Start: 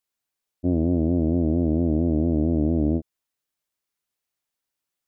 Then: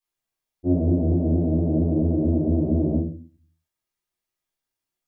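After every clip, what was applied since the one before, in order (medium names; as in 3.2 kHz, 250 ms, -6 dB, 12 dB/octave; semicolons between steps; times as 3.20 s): simulated room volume 190 m³, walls furnished, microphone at 3.8 m; trim -8.5 dB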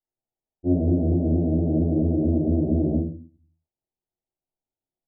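elliptic low-pass 830 Hz, stop band 50 dB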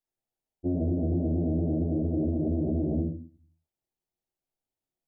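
peak limiter -20.5 dBFS, peak gain reduction 10 dB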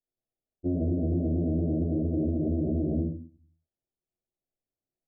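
steep low-pass 720 Hz 36 dB/octave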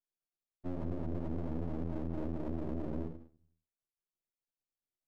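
half-wave rectifier; trim -6.5 dB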